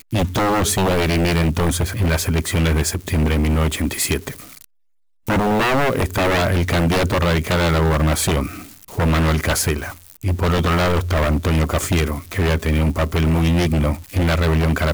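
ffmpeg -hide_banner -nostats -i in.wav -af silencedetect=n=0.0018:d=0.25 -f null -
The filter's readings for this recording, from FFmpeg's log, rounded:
silence_start: 4.64
silence_end: 5.24 | silence_duration: 0.60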